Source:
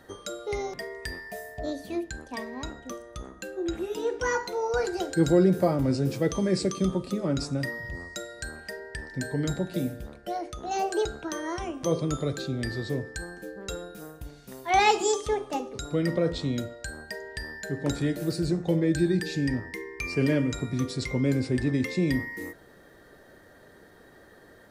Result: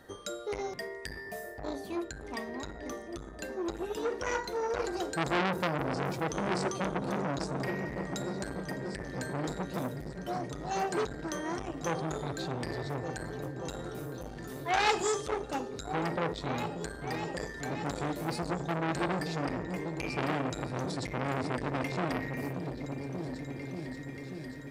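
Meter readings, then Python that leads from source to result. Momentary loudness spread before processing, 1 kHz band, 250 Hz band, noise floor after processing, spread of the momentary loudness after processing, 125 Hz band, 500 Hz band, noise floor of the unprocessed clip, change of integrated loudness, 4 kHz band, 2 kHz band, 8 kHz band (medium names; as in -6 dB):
14 LU, -2.5 dB, -7.5 dB, -44 dBFS, 9 LU, -7.0 dB, -5.5 dB, -54 dBFS, -6.0 dB, -4.0 dB, -3.0 dB, -5.0 dB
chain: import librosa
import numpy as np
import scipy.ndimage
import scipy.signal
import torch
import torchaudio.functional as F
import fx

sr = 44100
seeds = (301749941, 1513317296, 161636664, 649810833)

y = fx.echo_opening(x, sr, ms=584, hz=200, octaves=2, feedback_pct=70, wet_db=-6)
y = fx.transformer_sat(y, sr, knee_hz=2200.0)
y = F.gain(torch.from_numpy(y), -2.0).numpy()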